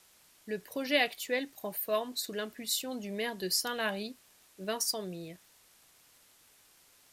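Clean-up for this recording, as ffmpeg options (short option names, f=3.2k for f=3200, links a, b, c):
-af "adeclick=t=4,afftdn=nr=17:nf=-63"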